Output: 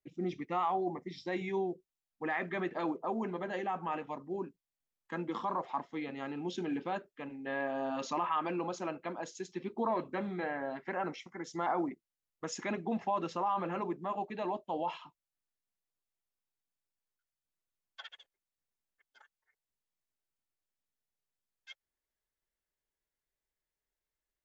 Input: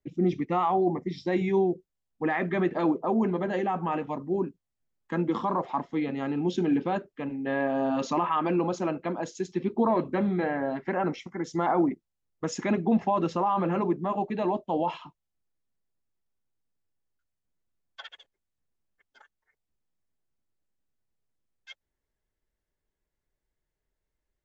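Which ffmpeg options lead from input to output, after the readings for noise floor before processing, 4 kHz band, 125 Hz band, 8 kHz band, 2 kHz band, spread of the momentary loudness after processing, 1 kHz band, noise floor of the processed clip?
-85 dBFS, -4.0 dB, -12.5 dB, no reading, -4.5 dB, 10 LU, -6.0 dB, under -85 dBFS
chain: -af "lowshelf=f=460:g=-10,volume=0.631"

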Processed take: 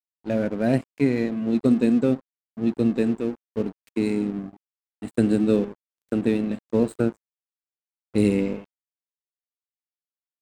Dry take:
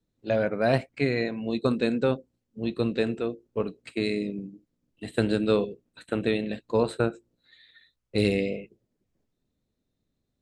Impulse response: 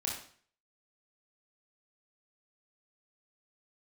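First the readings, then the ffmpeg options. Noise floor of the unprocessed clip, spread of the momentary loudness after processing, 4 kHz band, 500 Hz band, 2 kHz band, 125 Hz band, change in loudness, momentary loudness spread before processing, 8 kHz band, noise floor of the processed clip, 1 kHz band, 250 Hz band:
-80 dBFS, 10 LU, -7.0 dB, +0.5 dB, -4.0 dB, +2.5 dB, +4.0 dB, 9 LU, no reading, under -85 dBFS, -3.5 dB, +7.0 dB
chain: -af "equalizer=f=250:t=o:w=1:g=10,equalizer=f=1000:t=o:w=1:g=-9,equalizer=f=4000:t=o:w=1:g=-9,equalizer=f=8000:t=o:w=1:g=7,aeval=exprs='sgn(val(0))*max(abs(val(0))-0.0112,0)':c=same"

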